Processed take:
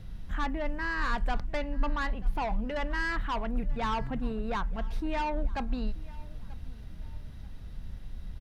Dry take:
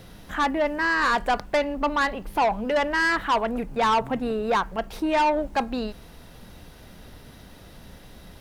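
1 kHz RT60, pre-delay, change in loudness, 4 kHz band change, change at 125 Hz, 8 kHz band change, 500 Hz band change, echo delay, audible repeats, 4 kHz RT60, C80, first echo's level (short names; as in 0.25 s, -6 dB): none, none, -9.0 dB, -10.5 dB, +4.0 dB, -13.0 dB, -12.0 dB, 0.935 s, 2, none, none, -22.0 dB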